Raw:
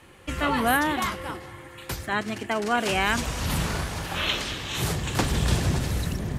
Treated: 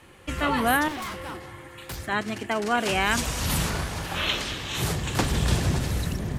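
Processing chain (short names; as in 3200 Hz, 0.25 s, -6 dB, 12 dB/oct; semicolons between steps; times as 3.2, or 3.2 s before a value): 0.88–1.98 hard clip -31.5 dBFS, distortion -18 dB; 3.11–3.7 high shelf 4300 Hz +6 dB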